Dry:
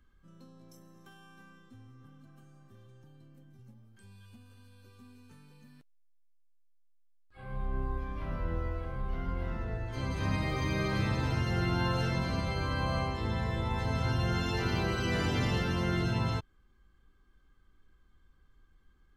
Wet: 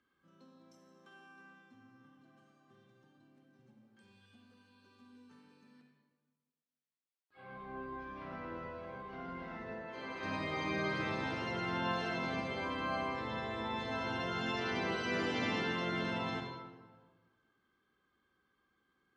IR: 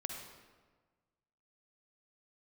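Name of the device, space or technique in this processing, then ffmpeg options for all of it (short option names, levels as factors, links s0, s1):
supermarket ceiling speaker: -filter_complex "[0:a]asettb=1/sr,asplit=3[s0][s1][s2];[s0]atrim=end=9.754[s3];[s1]atrim=start=9.75:end=10.23,asetpts=PTS-STARTPTS,afade=t=in:d=0.004:c=qsin,afade=t=out:st=0.476:d=0.004:c=qsin,bass=f=250:g=-12,treble=f=4000:g=-7[s4];[s2]atrim=start=10.226[s5];[s3][s4]acrossfade=d=0.004:c1=hsin:c2=qsin[s6];[s6][s5]acrossfade=d=0.004:c1=qsin:c2=hsin,highpass=250,lowpass=5200[s7];[1:a]atrim=start_sample=2205[s8];[s7][s8]afir=irnorm=-1:irlink=0,volume=0.841"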